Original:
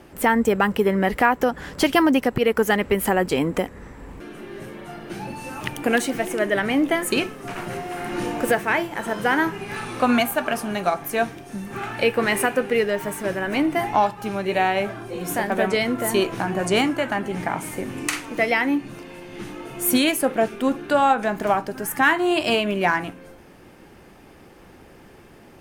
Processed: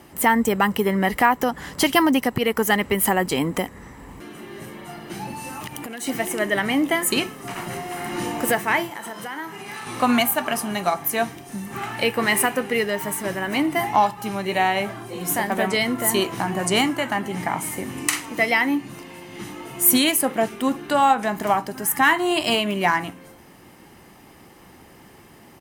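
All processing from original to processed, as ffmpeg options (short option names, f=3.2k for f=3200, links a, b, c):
-filter_complex "[0:a]asettb=1/sr,asplit=3[a][b][c];[a]atrim=end=5.484[d];[b]atrim=start=5.48:end=6.07,asetpts=PTS-STARTPTS,afade=t=in:d=0.004:c=qsin,afade=t=out:st=0.586:d=0.004:c=qsin,acompressor=threshold=-29dB:ratio=10:attack=3.2:release=140:knee=1:detection=peak,aeval=exprs='clip(val(0),-1,0.0501)':c=same[e];[c]atrim=start=6.066[f];[d][e]acrossfade=d=0.004:c1=hsin:c2=qsin[g];[g][f]acrossfade=d=0.004:c1=qsin:c2=hsin,asettb=1/sr,asplit=3[h][i][j];[h]atrim=end=8.904[k];[i]atrim=start=8.9:end=9.87,asetpts=PTS-STARTPTS,afade=t=in:d=0.004:c=qsin,afade=t=out:st=0.966:d=0.004:c=qsin,highpass=f=260:p=1,acompressor=threshold=-32dB:ratio=3:attack=3.2:release=140:knee=1:detection=peak,asplit=2[l][m];[m]adelay=32,volume=-13.5dB[n];[l][n]amix=inputs=2:normalize=0,atrim=end_sample=42777[o];[j]atrim=start=9.866[p];[k][o]acrossfade=d=0.004:c1=hsin:c2=qsin[q];[q][p]acrossfade=d=0.004:c1=qsin:c2=hsin,highpass=f=98:p=1,highshelf=f=6.7k:g=8.5,aecho=1:1:1:0.33"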